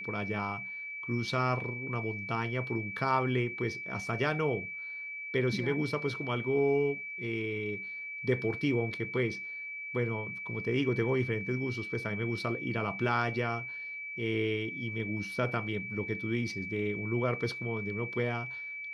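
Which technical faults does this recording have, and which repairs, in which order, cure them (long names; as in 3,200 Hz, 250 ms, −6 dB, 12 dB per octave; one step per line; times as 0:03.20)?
whistle 2,300 Hz −38 dBFS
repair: notch filter 2,300 Hz, Q 30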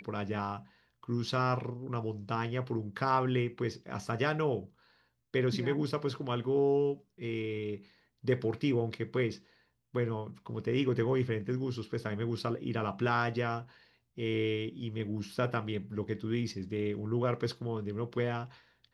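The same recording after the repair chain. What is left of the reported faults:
none of them is left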